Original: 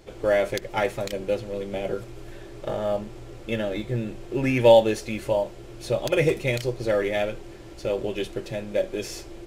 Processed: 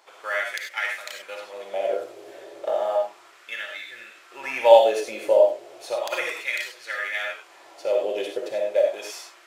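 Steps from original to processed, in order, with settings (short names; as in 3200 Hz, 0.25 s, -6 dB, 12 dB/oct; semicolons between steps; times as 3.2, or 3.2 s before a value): LFO high-pass sine 0.33 Hz 490–1700 Hz; on a send: reverb, pre-delay 15 ms, DRR 1.5 dB; on the sum: gain -2.5 dB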